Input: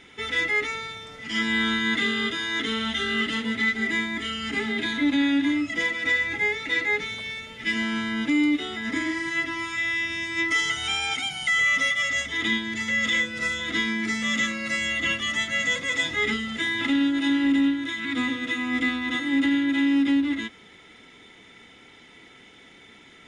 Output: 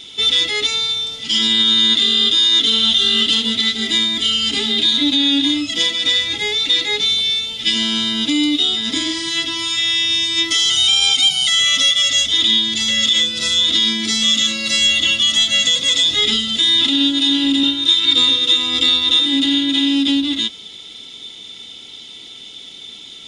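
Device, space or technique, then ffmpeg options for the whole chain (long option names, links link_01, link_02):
over-bright horn tweeter: -filter_complex "[0:a]highshelf=frequency=2600:width_type=q:width=3:gain=11,alimiter=limit=-10dB:level=0:latency=1:release=56,asettb=1/sr,asplit=3[link_01][link_02][link_03];[link_01]atrim=end=17.634[link_04];[link_02]atrim=start=17.63:end=19.26,asetpts=PTS-STARTPTS,afade=type=in:duration=0.004:curve=qsin,afade=type=out:start_time=1.626:duration=0.004:curve=qsin,aecho=1:1:2.2:0.77,atrim=end_sample=71883[link_05];[link_03]atrim=start=19.256[link_06];[link_04][link_05]acrossfade=duration=0.004:curve1=hsin:curve2=qsin[link_07];[link_07][link_06]acrossfade=duration=0.004:curve1=qsin:curve2=hsin,volume=4dB"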